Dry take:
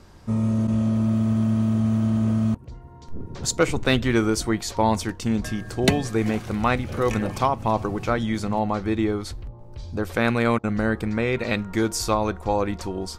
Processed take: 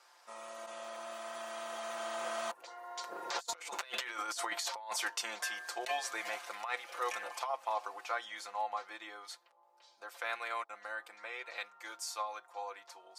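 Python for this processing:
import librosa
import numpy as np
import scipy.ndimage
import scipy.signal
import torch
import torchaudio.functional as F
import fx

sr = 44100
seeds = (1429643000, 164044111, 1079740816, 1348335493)

y = fx.doppler_pass(x, sr, speed_mps=5, closest_m=1.4, pass_at_s=3.4)
y = scipy.signal.sosfilt(scipy.signal.butter(4, 700.0, 'highpass', fs=sr, output='sos'), y)
y = y + 0.71 * np.pad(y, (int(5.8 * sr / 1000.0), 0))[:len(y)]
y = fx.over_compress(y, sr, threshold_db=-47.0, ratio=-1.0)
y = 10.0 ** (-29.5 / 20.0) * (np.abs((y / 10.0 ** (-29.5 / 20.0) + 3.0) % 4.0 - 2.0) - 1.0)
y = F.gain(torch.from_numpy(y), 7.0).numpy()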